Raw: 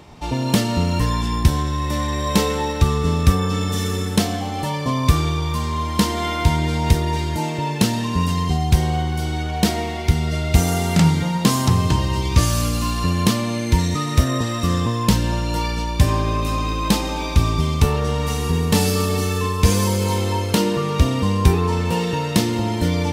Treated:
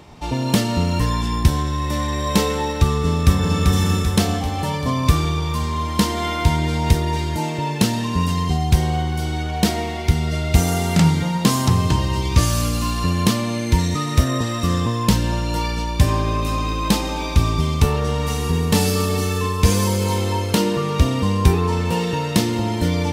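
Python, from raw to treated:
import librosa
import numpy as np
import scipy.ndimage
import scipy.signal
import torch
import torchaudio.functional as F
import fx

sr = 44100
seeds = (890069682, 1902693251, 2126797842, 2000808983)

y = fx.echo_throw(x, sr, start_s=2.9, length_s=0.7, ms=390, feedback_pct=60, wet_db=-3.0)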